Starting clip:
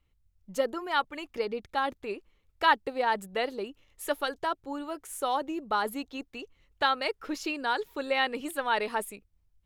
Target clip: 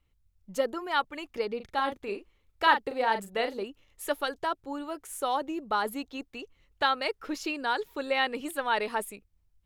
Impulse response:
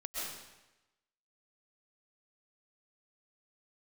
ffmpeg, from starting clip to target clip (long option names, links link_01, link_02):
-filter_complex "[0:a]asettb=1/sr,asplit=3[link_01][link_02][link_03];[link_01]atrim=end=1.564[link_04];[link_02]atrim=start=1.56:end=3.63,asetpts=PTS-STARTPTS,afade=type=in:duration=0.004:curve=qsin,afade=type=out:start_time=2.066:duration=0.004:curve=qsin,asplit=2[link_05][link_06];[link_06]adelay=40,volume=-8dB[link_07];[link_05][link_07]amix=inputs=2:normalize=0,atrim=end_sample=91287[link_08];[link_03]atrim=start=3.626[link_09];[link_04][link_08]acrossfade=duration=0.004:curve1=hsin:curve2=qsin[link_10];[link_10][link_09]acrossfade=duration=0.004:curve1=qsin:curve2=hsin"